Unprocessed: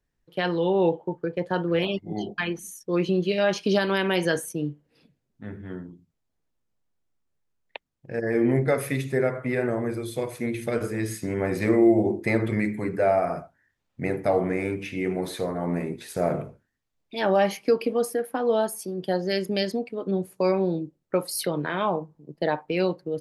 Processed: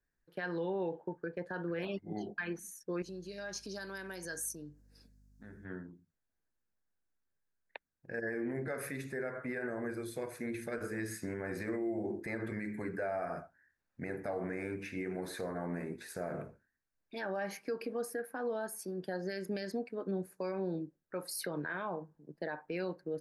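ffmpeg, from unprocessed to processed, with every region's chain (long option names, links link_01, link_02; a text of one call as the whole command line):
ffmpeg -i in.wav -filter_complex "[0:a]asettb=1/sr,asplit=3[link_01][link_02][link_03];[link_01]atrim=end=3.024[link_04];[link_02]atrim=start=3.02:end=5.65,asetpts=PTS-STARTPTS,afade=type=in:duration=0.004:curve=qsin,afade=type=out:start_time=2.626:duration=0.004:curve=qsin,acompressor=threshold=-44dB:ratio=2:attack=3.2:release=140:knee=1:detection=peak,highshelf=frequency=3900:width_type=q:width=1.5:gain=12,aeval=exprs='val(0)+0.002*(sin(2*PI*50*n/s)+sin(2*PI*2*50*n/s)/2+sin(2*PI*3*50*n/s)/3+sin(2*PI*4*50*n/s)/4+sin(2*PI*5*50*n/s)/5)':channel_layout=same[link_05];[link_03]atrim=start=5.646[link_06];[link_04][link_05]acrossfade=duration=0.004:curve1=hsin:curve2=qsin[link_07];[link_07][link_06]acrossfade=duration=0.004:curve1=qsin:curve2=hsin,equalizer=frequency=125:width_type=o:width=0.33:gain=-8,equalizer=frequency=1600:width_type=o:width=0.33:gain=11,equalizer=frequency=3150:width_type=o:width=0.33:gain=-10,alimiter=limit=-20.5dB:level=0:latency=1:release=113,volume=-8dB" out.wav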